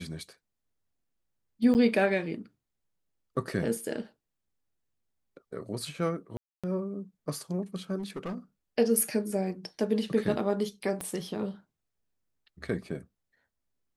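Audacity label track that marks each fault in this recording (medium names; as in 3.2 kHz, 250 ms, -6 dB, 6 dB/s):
1.740000	1.750000	dropout 9.4 ms
6.370000	6.640000	dropout 266 ms
7.980000	8.380000	clipped -31.5 dBFS
11.010000	11.010000	pop -20 dBFS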